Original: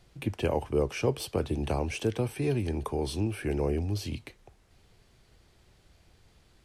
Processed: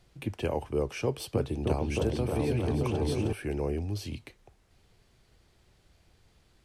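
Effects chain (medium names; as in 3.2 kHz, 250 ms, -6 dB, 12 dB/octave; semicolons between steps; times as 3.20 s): 1.02–3.33 s: delay with an opening low-pass 311 ms, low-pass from 400 Hz, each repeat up 2 oct, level 0 dB; trim -2.5 dB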